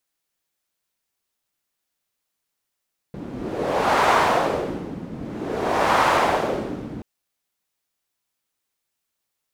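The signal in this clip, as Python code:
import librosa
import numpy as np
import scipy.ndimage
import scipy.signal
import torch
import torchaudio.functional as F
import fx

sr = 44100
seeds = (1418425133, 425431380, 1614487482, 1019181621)

y = fx.wind(sr, seeds[0], length_s=3.88, low_hz=220.0, high_hz=960.0, q=1.6, gusts=2, swing_db=16.5)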